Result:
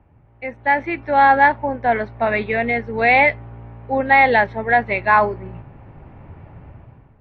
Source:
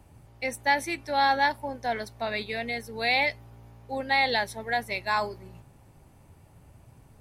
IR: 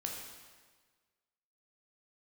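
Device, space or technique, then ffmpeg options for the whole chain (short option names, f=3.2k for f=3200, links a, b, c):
action camera in a waterproof case: -af "lowpass=f=2.3k:w=0.5412,lowpass=f=2.3k:w=1.3066,dynaudnorm=f=280:g=5:m=15dB" -ar 24000 -c:a aac -b:a 48k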